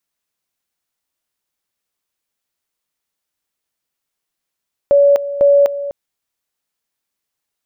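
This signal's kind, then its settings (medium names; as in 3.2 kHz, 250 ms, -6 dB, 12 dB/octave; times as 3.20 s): two-level tone 567 Hz -6.5 dBFS, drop 13.5 dB, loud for 0.25 s, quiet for 0.25 s, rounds 2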